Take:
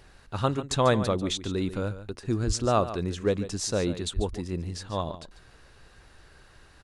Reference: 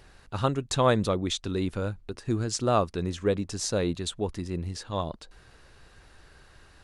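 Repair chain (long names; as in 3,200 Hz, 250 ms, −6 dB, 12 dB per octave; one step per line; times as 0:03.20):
0:02.46–0:02.58: high-pass filter 140 Hz 24 dB per octave
0:04.15–0:04.27: high-pass filter 140 Hz 24 dB per octave
echo removal 143 ms −13 dB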